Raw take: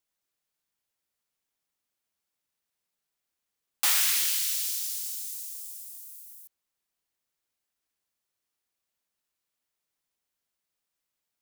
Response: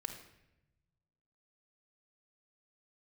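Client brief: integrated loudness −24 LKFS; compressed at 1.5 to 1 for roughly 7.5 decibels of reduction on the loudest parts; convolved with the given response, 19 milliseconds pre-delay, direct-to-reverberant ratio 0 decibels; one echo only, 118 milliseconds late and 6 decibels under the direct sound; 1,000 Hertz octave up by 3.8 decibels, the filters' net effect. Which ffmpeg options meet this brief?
-filter_complex "[0:a]equalizer=frequency=1000:width_type=o:gain=5,acompressor=threshold=-41dB:ratio=1.5,aecho=1:1:118:0.501,asplit=2[link_01][link_02];[1:a]atrim=start_sample=2205,adelay=19[link_03];[link_02][link_03]afir=irnorm=-1:irlink=0,volume=1dB[link_04];[link_01][link_04]amix=inputs=2:normalize=0,volume=5dB"

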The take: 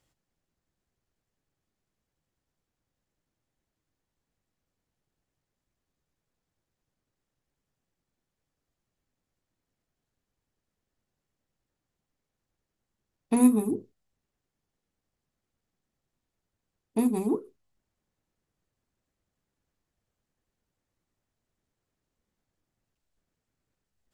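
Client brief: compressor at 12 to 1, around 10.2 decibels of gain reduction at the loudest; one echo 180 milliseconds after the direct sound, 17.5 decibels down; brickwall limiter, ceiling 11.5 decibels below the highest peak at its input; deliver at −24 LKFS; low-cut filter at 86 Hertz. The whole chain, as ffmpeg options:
ffmpeg -i in.wav -af "highpass=86,acompressor=threshold=-24dB:ratio=12,alimiter=level_in=4dB:limit=-24dB:level=0:latency=1,volume=-4dB,aecho=1:1:180:0.133,volume=13.5dB" out.wav

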